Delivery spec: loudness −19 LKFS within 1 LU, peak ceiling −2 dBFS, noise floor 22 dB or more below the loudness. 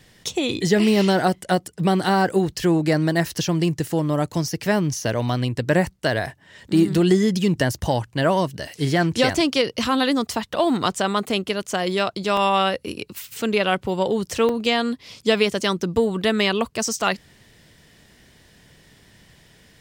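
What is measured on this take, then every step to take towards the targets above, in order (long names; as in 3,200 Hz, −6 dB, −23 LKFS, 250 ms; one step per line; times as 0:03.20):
number of dropouts 2; longest dropout 2.5 ms; integrated loudness −21.5 LKFS; sample peak −6.0 dBFS; target loudness −19.0 LKFS
→ repair the gap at 0:12.37/0:14.49, 2.5 ms
level +2.5 dB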